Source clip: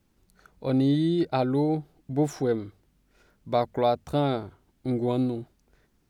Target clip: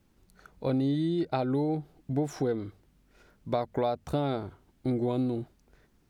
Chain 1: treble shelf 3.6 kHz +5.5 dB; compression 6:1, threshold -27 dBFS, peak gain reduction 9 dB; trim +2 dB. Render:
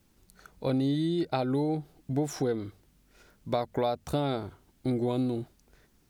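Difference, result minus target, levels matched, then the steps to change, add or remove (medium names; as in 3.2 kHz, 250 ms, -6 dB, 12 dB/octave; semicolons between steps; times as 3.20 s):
8 kHz band +6.0 dB
change: treble shelf 3.6 kHz -2.5 dB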